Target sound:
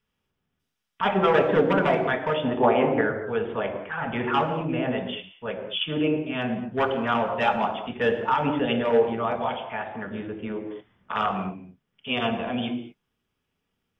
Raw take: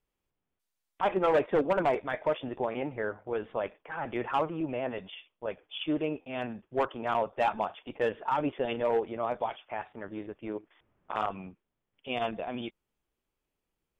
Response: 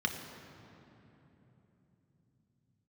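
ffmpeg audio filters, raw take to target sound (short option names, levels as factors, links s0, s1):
-filter_complex "[0:a]asettb=1/sr,asplit=3[s0][s1][s2];[s0]atrim=end=2.444[s3];[s1]atrim=start=2.44:end=3.01,asetpts=PTS-STARTPTS,afade=t=in:d=0.004:c=qsin,afade=t=out:st=0.566:d=0.004:c=qsin,equalizer=f=790:w=0.52:g=9.5[s4];[s2]atrim=start=3.006[s5];[s3][s4]acrossfade=d=0.004:c1=hsin:c2=qsin[s6];[s6][s5]acrossfade=d=0.004:c1=qsin:c2=hsin[s7];[1:a]atrim=start_sample=2205,afade=t=out:st=0.29:d=0.01,atrim=end_sample=13230[s8];[s7][s8]afir=irnorm=-1:irlink=0,volume=1.26"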